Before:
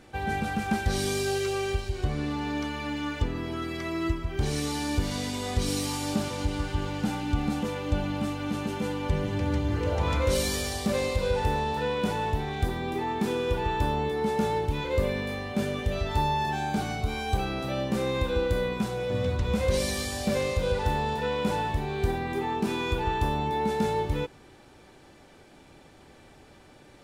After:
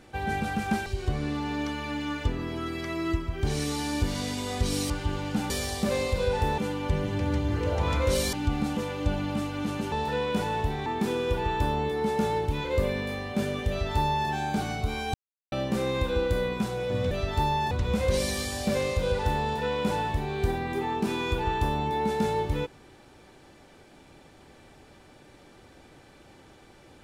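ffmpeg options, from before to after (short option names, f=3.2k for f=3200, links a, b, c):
-filter_complex "[0:a]asplit=12[a][b][c][d][e][f][g][h][i][j][k][l];[a]atrim=end=0.862[m];[b]atrim=start=1.818:end=5.862[n];[c]atrim=start=6.588:end=7.192[o];[d]atrim=start=10.528:end=11.612[p];[e]atrim=start=8.778:end=10.532[q];[f]atrim=start=7.188:end=8.782[r];[g]atrim=start=11.608:end=12.552[s];[h]atrim=start=13.058:end=17.34,asetpts=PTS-STARTPTS,afade=t=out:st=4.278:d=0.004:c=hsin[t];[i]atrim=start=17.34:end=17.72,asetpts=PTS-STARTPTS,volume=0[u];[j]atrim=start=17.72:end=19.312,asetpts=PTS-STARTPTS,afade=t=in:d=0.004:c=hsin[v];[k]atrim=start=15.888:end=16.492[w];[l]atrim=start=19.308[x];[m][n]acrossfade=d=0.004:c1=hsin:c2=hsin[y];[y][o]acrossfade=d=0.004:c1=hsin:c2=hsin[z];[z][p]acrossfade=d=0.004:c1=hsin:c2=hsin[aa];[aa][q]acrossfade=d=0.004:c1=hsin:c2=hsin[ab];[ab][r]acrossfade=d=0.004:c1=hsin:c2=hsin[ac];[ac][s]acrossfade=d=0.004:c1=hsin:c2=hsin[ad];[t][u][v]concat=n=3:v=0:a=1[ae];[ad][ae]acrossfade=d=0.004:c1=hsin:c2=hsin[af];[af][w]acrossfade=d=0.004:c1=hsin:c2=hsin[ag];[ag][x]acrossfade=d=0.004:c1=hsin:c2=hsin"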